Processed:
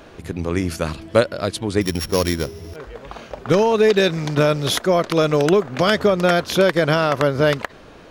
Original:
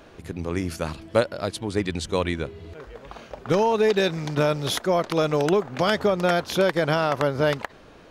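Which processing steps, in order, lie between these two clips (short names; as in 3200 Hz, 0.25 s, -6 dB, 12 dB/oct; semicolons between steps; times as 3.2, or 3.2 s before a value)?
1.81–2.76 sample sorter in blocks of 8 samples; dynamic EQ 840 Hz, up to -6 dB, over -41 dBFS, Q 3.9; gain +5.5 dB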